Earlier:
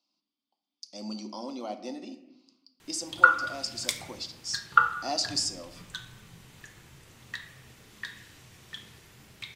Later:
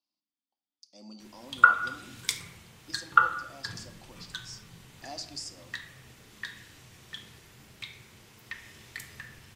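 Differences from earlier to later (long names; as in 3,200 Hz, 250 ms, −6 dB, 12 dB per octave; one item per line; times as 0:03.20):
speech −10.5 dB
background: entry −1.60 s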